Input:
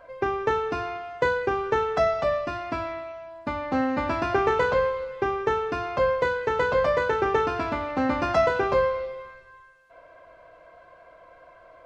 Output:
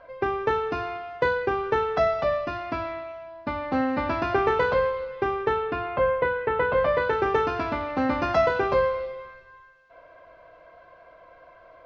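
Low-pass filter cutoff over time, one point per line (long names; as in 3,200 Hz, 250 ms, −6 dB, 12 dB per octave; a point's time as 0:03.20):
low-pass filter 24 dB per octave
0:05.34 5,200 Hz
0:06.02 2,900 Hz
0:06.66 2,900 Hz
0:07.26 5,700 Hz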